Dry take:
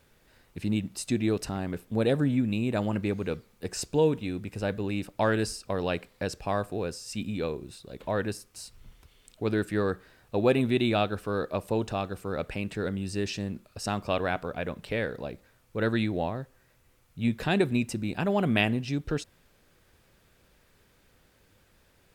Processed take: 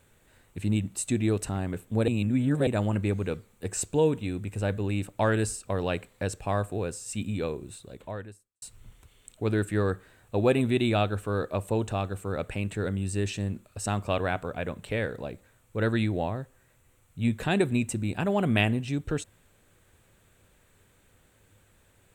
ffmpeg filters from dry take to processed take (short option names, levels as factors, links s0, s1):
-filter_complex "[0:a]asplit=4[s0][s1][s2][s3];[s0]atrim=end=2.082[s4];[s1]atrim=start=2.078:end=2.672,asetpts=PTS-STARTPTS,areverse[s5];[s2]atrim=start=2.668:end=8.62,asetpts=PTS-STARTPTS,afade=t=out:st=5.162:d=0.79:c=qua[s6];[s3]atrim=start=8.62,asetpts=PTS-STARTPTS,afade=t=in:d=0.004:c=hsin[s7];[s4][s5]acrossfade=d=0.004:c1=hsin:c2=hsin[s8];[s6][s7]concat=n=2:v=0:a=1[s9];[s8][s9]acrossfade=d=0.004:c1=hsin:c2=hsin,equalizer=f=100:t=o:w=0.33:g=7,equalizer=f=5000:t=o:w=0.33:g=-10,equalizer=f=8000:t=o:w=0.33:g=9"